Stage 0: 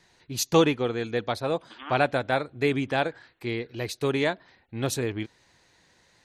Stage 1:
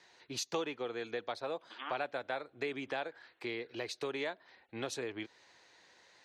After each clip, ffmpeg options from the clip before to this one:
-filter_complex "[0:a]highpass=60,acrossover=split=320 7300:gain=0.178 1 0.158[s0][s1][s2];[s0][s1][s2]amix=inputs=3:normalize=0,acompressor=threshold=0.0126:ratio=3"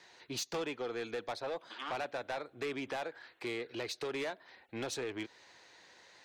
-af "asoftclip=type=tanh:threshold=0.0168,volume=1.5"

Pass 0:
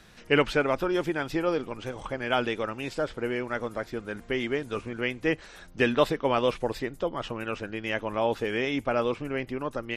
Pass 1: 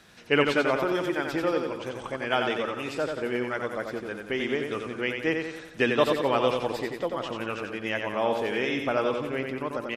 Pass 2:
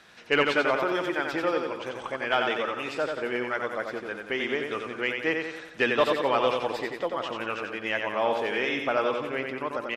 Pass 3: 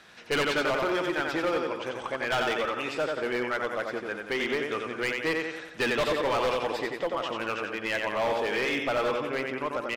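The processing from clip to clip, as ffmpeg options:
-af "highpass=f=150:p=1,aecho=1:1:90|180|270|360|450|540|630:0.562|0.292|0.152|0.0791|0.0411|0.0214|0.0111"
-filter_complex "[0:a]asplit=2[s0][s1];[s1]highpass=f=720:p=1,volume=3.16,asoftclip=type=tanh:threshold=0.473[s2];[s0][s2]amix=inputs=2:normalize=0,lowpass=f=3400:p=1,volume=0.501,volume=0.794"
-af "asoftclip=type=hard:threshold=0.0668,volume=1.12"

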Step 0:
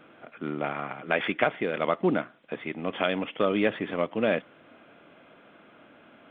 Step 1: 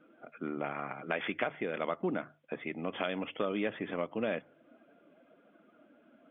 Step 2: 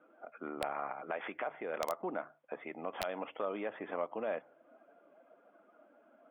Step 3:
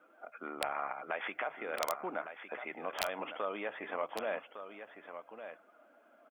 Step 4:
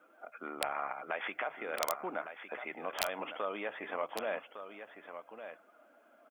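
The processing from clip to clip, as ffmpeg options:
-af "afftdn=nr=14:nf=-47,bandreject=f=50:t=h:w=6,bandreject=f=100:t=h:w=6,bandreject=f=150:t=h:w=6,acompressor=threshold=0.0316:ratio=2,volume=0.708"
-af "alimiter=level_in=1.12:limit=0.0631:level=0:latency=1:release=117,volume=0.891,bandpass=f=840:t=q:w=1.4:csg=0,aeval=exprs='(mod(25.1*val(0)+1,2)-1)/25.1':c=same,volume=1.68"
-filter_complex "[0:a]tiltshelf=f=850:g=-5.5,bandreject=f=50:t=h:w=6,bandreject=f=100:t=h:w=6,bandreject=f=150:t=h:w=6,asplit=2[s0][s1];[s1]aecho=0:1:1157:0.316[s2];[s0][s2]amix=inputs=2:normalize=0,volume=1.12"
-af "highshelf=f=4700:g=4.5"

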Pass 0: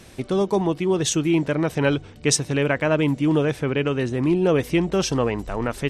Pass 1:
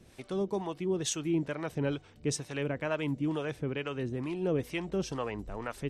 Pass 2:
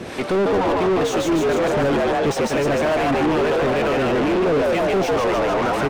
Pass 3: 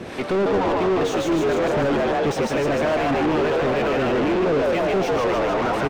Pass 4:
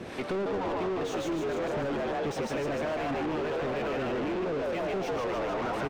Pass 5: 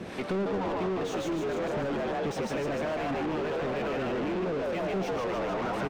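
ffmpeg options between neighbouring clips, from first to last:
-filter_complex "[0:a]acrossover=split=550[s0][s1];[s0]aeval=exprs='val(0)*(1-0.7/2+0.7/2*cos(2*PI*2.2*n/s))':c=same[s2];[s1]aeval=exprs='val(0)*(1-0.7/2-0.7/2*cos(2*PI*2.2*n/s))':c=same[s3];[s2][s3]amix=inputs=2:normalize=0,volume=0.376"
-filter_complex "[0:a]asplit=9[s0][s1][s2][s3][s4][s5][s6][s7][s8];[s1]adelay=149,afreqshift=86,volume=0.631[s9];[s2]adelay=298,afreqshift=172,volume=0.359[s10];[s3]adelay=447,afreqshift=258,volume=0.204[s11];[s4]adelay=596,afreqshift=344,volume=0.117[s12];[s5]adelay=745,afreqshift=430,volume=0.0668[s13];[s6]adelay=894,afreqshift=516,volume=0.038[s14];[s7]adelay=1043,afreqshift=602,volume=0.0216[s15];[s8]adelay=1192,afreqshift=688,volume=0.0123[s16];[s0][s9][s10][s11][s12][s13][s14][s15][s16]amix=inputs=9:normalize=0,asplit=2[s17][s18];[s18]highpass=f=720:p=1,volume=70.8,asoftclip=type=tanh:threshold=0.15[s19];[s17][s19]amix=inputs=2:normalize=0,lowpass=f=1100:p=1,volume=0.501,volume=1.88"
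-filter_complex "[0:a]asplit=2[s0][s1];[s1]adynamicsmooth=sensitivity=5:basefreq=4900,volume=0.531[s2];[s0][s2]amix=inputs=2:normalize=0,aecho=1:1:110:0.251,volume=0.531"
-af "acompressor=threshold=0.0794:ratio=6,volume=0.473"
-af "equalizer=f=190:t=o:w=0.24:g=7"

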